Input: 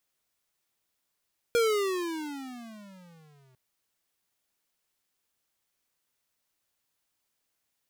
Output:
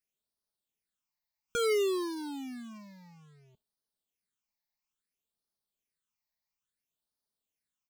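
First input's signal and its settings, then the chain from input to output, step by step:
gliding synth tone square, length 2.00 s, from 477 Hz, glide -23 st, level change -39 dB, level -22.5 dB
spectral noise reduction 9 dB; comb 4.7 ms, depth 34%; phaser stages 8, 0.59 Hz, lowest notch 390–2500 Hz

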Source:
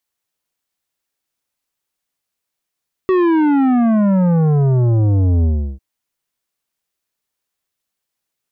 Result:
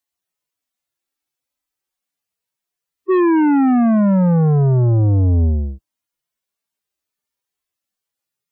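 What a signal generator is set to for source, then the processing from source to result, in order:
sub drop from 380 Hz, over 2.70 s, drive 11 dB, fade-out 0.35 s, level -12 dB
median-filter separation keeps harmonic

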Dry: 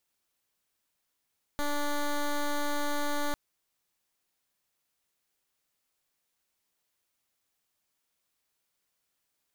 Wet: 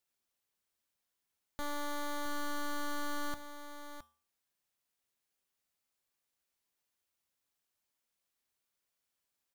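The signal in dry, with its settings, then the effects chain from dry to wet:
pulse 291 Hz, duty 11% -29 dBFS 1.75 s
resonator 78 Hz, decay 0.41 s, harmonics odd, mix 60%; on a send: echo 0.666 s -10 dB

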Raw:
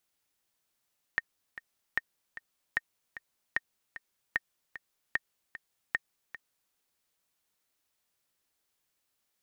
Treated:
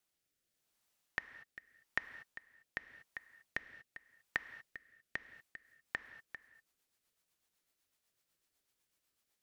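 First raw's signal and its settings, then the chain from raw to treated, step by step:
metronome 151 bpm, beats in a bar 2, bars 7, 1840 Hz, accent 14.5 dB -14 dBFS
compressor, threshold -30 dBFS; rotary speaker horn 0.85 Hz, later 8 Hz, at 5.21; non-linear reverb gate 0.26 s flat, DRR 12 dB

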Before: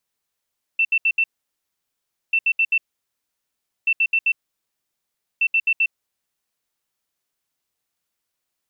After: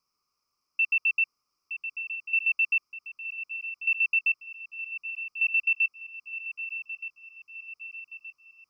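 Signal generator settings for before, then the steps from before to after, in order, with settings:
beep pattern sine 2680 Hz, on 0.06 s, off 0.07 s, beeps 4, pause 1.09 s, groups 4, -14.5 dBFS
EQ curve 420 Hz 0 dB, 600 Hz -6 dB, 850 Hz -4 dB, 1200 Hz +14 dB, 1700 Hz -18 dB, 2400 Hz +1 dB, 3600 Hz -20 dB, 5100 Hz +11 dB, 7100 Hz -9 dB; on a send: swung echo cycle 1.222 s, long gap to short 3:1, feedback 51%, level -10.5 dB

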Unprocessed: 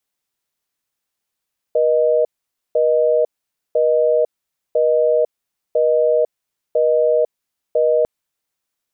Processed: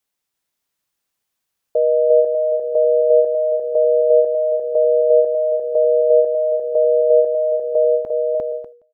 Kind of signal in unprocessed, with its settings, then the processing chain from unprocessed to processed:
call progress tone busy tone, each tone -15 dBFS 6.30 s
bouncing-ball echo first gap 0.35 s, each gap 0.7×, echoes 5; ending taper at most 120 dB/s

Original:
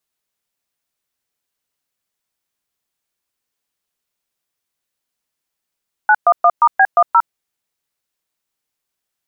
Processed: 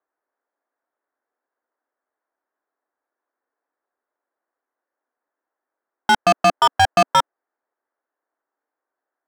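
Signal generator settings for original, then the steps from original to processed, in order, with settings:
DTMF "911*B10", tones 57 ms, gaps 0.119 s, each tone -9.5 dBFS
elliptic band-pass 270–1700 Hz; bell 690 Hz +7.5 dB 2.5 oct; overloaded stage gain 11 dB

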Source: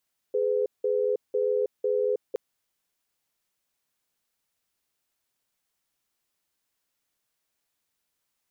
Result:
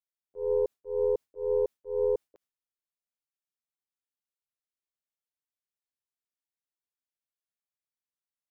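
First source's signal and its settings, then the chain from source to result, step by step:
cadence 418 Hz, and 503 Hz, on 0.32 s, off 0.18 s, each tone -25 dBFS 2.02 s
tracing distortion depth 0.2 ms; gate with hold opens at -20 dBFS; auto swell 0.187 s

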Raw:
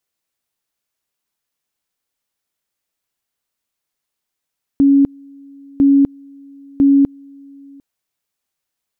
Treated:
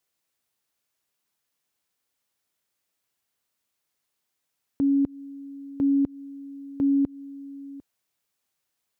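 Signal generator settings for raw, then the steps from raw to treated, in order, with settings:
two-level tone 278 Hz -7 dBFS, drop 29.5 dB, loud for 0.25 s, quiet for 0.75 s, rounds 3
HPF 59 Hz; compressor, threshold -17 dBFS; limiter -17.5 dBFS

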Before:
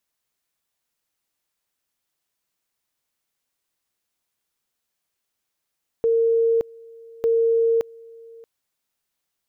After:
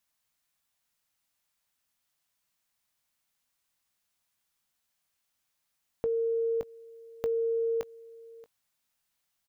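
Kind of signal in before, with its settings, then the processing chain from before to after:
two-level tone 458 Hz -15.5 dBFS, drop 25 dB, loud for 0.57 s, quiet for 0.63 s, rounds 2
doubler 20 ms -13 dB; compressor, threshold -20 dBFS; bell 400 Hz -9 dB 0.77 oct

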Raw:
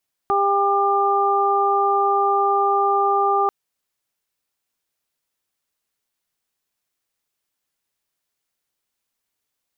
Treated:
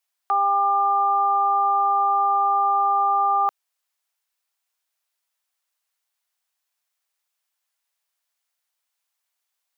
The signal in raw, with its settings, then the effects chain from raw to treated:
steady additive tone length 3.19 s, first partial 399 Hz, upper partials 2.5/2 dB, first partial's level -21.5 dB
HPF 630 Hz 24 dB/oct

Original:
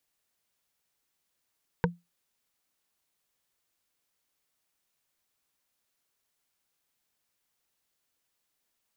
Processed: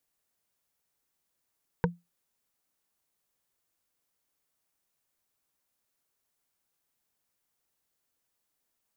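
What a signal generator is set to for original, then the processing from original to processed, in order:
wood hit, lowest mode 173 Hz, modes 4, decay 0.21 s, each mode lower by 0 dB, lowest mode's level -19.5 dB
bell 3200 Hz -4.5 dB 2.1 oct

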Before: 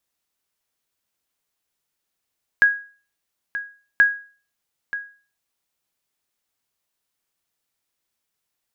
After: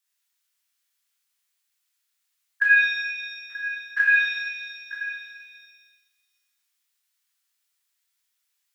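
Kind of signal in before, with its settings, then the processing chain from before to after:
sonar ping 1650 Hz, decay 0.39 s, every 1.38 s, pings 2, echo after 0.93 s, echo -13.5 dB -7 dBFS
stepped spectrum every 50 ms; HPF 1500 Hz 12 dB/oct; shimmer reverb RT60 1.4 s, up +7 st, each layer -8 dB, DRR -3.5 dB

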